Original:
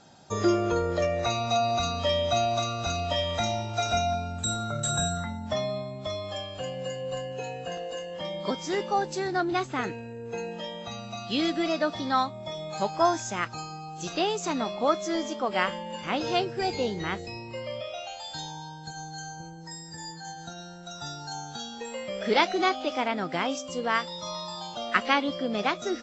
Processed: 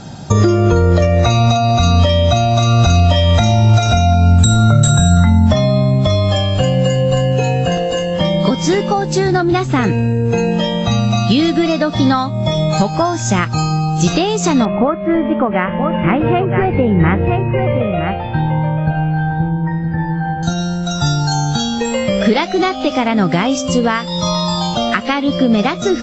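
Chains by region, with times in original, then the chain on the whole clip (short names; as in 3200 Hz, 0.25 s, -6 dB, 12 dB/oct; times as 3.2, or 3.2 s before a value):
14.65–20.43 steep low-pass 2500 Hz + echo 0.968 s -11 dB
whole clip: compressor, threshold -31 dBFS; tone controls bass +13 dB, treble 0 dB; maximiser +18.5 dB; gain -1 dB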